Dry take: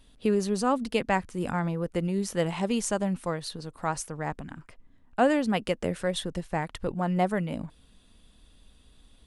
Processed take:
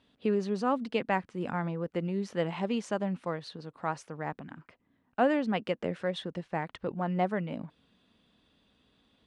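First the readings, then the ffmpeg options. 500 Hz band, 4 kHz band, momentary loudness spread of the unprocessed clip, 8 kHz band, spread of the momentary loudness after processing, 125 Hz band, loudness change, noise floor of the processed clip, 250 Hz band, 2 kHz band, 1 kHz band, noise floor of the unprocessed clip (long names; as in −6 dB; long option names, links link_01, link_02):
−3.0 dB, −6.0 dB, 9 LU, −16.5 dB, 10 LU, −4.5 dB, −3.5 dB, −74 dBFS, −4.0 dB, −3.5 dB, −3.0 dB, −59 dBFS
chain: -af "highpass=140,lowpass=3600,volume=-3dB"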